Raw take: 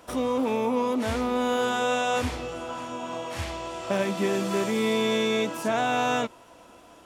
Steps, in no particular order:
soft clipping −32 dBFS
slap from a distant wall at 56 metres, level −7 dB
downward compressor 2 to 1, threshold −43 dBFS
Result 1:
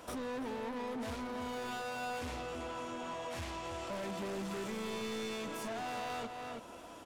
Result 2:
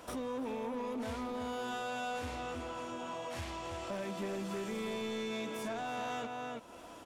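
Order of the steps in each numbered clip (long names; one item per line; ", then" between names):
soft clipping, then slap from a distant wall, then downward compressor
slap from a distant wall, then downward compressor, then soft clipping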